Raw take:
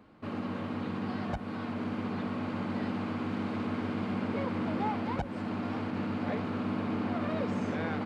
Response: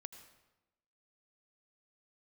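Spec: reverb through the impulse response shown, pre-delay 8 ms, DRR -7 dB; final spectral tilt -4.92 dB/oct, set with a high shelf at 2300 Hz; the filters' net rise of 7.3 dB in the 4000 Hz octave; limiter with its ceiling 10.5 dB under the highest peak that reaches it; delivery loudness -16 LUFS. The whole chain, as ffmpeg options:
-filter_complex "[0:a]highshelf=f=2.3k:g=4.5,equalizer=f=4k:t=o:g=5.5,alimiter=level_in=6dB:limit=-24dB:level=0:latency=1,volume=-6dB,asplit=2[a][b];[1:a]atrim=start_sample=2205,adelay=8[c];[b][c]afir=irnorm=-1:irlink=0,volume=12dB[d];[a][d]amix=inputs=2:normalize=0,volume=13.5dB"

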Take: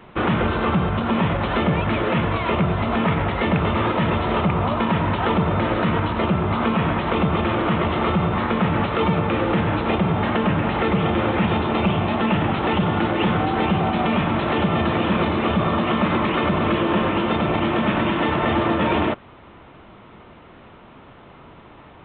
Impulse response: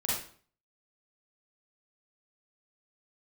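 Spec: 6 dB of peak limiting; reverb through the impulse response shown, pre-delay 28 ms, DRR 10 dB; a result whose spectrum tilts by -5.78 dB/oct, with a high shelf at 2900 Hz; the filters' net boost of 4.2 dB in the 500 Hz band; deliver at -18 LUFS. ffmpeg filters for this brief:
-filter_complex "[0:a]equalizer=f=500:t=o:g=5.5,highshelf=f=2.9k:g=-3.5,alimiter=limit=-12.5dB:level=0:latency=1,asplit=2[a][b];[1:a]atrim=start_sample=2205,adelay=28[c];[b][c]afir=irnorm=-1:irlink=0,volume=-16.5dB[d];[a][d]amix=inputs=2:normalize=0,volume=3dB"

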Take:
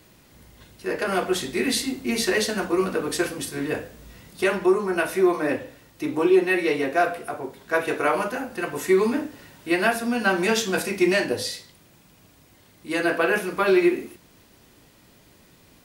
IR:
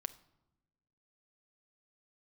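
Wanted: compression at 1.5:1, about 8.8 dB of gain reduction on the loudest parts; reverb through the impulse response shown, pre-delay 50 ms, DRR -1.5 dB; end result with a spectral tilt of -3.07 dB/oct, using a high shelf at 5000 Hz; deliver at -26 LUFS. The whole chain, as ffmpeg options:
-filter_complex "[0:a]highshelf=f=5k:g=7.5,acompressor=threshold=-39dB:ratio=1.5,asplit=2[a][b];[1:a]atrim=start_sample=2205,adelay=50[c];[b][c]afir=irnorm=-1:irlink=0,volume=3.5dB[d];[a][d]amix=inputs=2:normalize=0"

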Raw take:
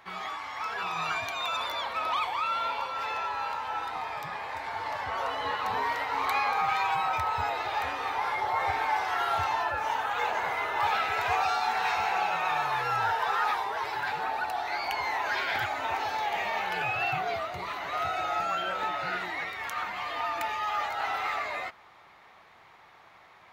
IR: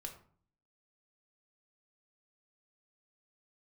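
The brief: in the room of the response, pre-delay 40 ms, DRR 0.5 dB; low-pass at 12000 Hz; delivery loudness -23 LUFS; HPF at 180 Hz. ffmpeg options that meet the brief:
-filter_complex "[0:a]highpass=180,lowpass=12k,asplit=2[a][b];[1:a]atrim=start_sample=2205,adelay=40[c];[b][c]afir=irnorm=-1:irlink=0,volume=3dB[d];[a][d]amix=inputs=2:normalize=0,volume=4dB"

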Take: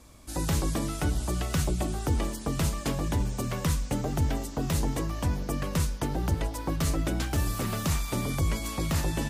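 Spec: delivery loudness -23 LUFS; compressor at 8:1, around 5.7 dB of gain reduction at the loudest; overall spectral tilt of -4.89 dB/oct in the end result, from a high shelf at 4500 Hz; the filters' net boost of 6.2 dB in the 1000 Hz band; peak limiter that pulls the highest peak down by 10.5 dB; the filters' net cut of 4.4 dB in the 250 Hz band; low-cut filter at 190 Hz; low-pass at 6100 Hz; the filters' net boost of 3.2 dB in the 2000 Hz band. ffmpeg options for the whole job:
-af "highpass=190,lowpass=6.1k,equalizer=f=250:t=o:g=-4,equalizer=f=1k:t=o:g=7.5,equalizer=f=2k:t=o:g=3,highshelf=f=4.5k:g=-7,acompressor=threshold=-33dB:ratio=8,volume=17dB,alimiter=limit=-12.5dB:level=0:latency=1"

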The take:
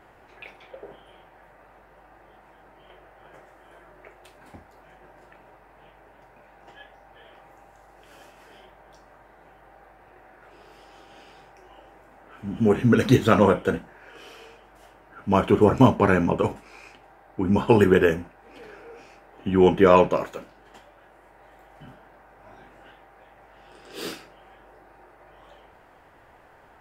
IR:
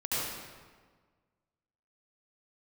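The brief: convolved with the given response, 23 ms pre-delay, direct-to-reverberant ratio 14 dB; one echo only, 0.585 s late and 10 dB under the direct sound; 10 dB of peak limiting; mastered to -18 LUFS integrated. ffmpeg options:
-filter_complex "[0:a]alimiter=limit=-13dB:level=0:latency=1,aecho=1:1:585:0.316,asplit=2[a][b];[1:a]atrim=start_sample=2205,adelay=23[c];[b][c]afir=irnorm=-1:irlink=0,volume=-22dB[d];[a][d]amix=inputs=2:normalize=0,volume=8dB"

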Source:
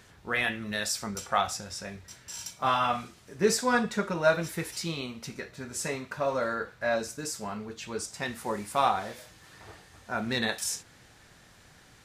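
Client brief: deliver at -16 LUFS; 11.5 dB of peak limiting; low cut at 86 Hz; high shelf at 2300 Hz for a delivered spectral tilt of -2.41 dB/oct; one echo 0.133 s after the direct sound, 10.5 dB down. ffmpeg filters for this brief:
-af "highpass=86,highshelf=f=2.3k:g=5.5,alimiter=limit=-20dB:level=0:latency=1,aecho=1:1:133:0.299,volume=15.5dB"

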